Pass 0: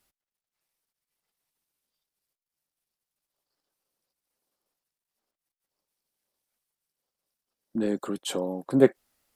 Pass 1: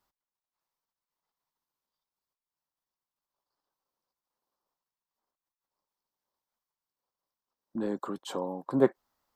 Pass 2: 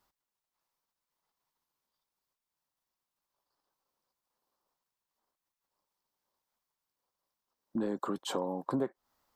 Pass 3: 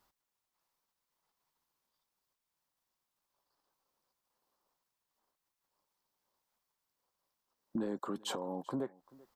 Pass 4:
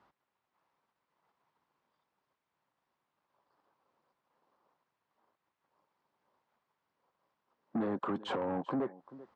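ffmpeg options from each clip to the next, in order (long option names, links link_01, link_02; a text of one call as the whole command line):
ffmpeg -i in.wav -af "equalizer=frequency=1000:width_type=o:width=0.67:gain=11,equalizer=frequency=2500:width_type=o:width=0.67:gain=-6,equalizer=frequency=10000:width_type=o:width=0.67:gain=-11,volume=-5.5dB" out.wav
ffmpeg -i in.wav -af "acompressor=threshold=-31dB:ratio=20,volume=3dB" out.wav
ffmpeg -i in.wav -af "alimiter=level_in=4.5dB:limit=-24dB:level=0:latency=1:release=410,volume=-4.5dB,aecho=1:1:388:0.0668,volume=1.5dB" out.wav
ffmpeg -i in.wav -af "asoftclip=type=tanh:threshold=-37.5dB,highpass=100,lowpass=2100,volume=9dB" out.wav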